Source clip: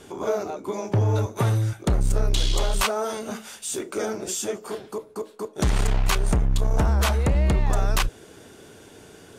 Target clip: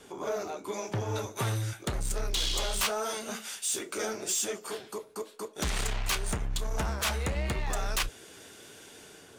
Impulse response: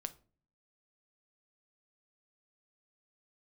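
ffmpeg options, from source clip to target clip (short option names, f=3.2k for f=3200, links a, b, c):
-filter_complex "[0:a]lowshelf=f=320:g=-6,acrossover=split=690|1600[a][b][c];[c]dynaudnorm=f=120:g=7:m=6.5dB[d];[a][b][d]amix=inputs=3:normalize=0,asoftclip=type=tanh:threshold=-19dB,flanger=delay=3.7:depth=7.6:regen=-60:speed=0.89:shape=triangular"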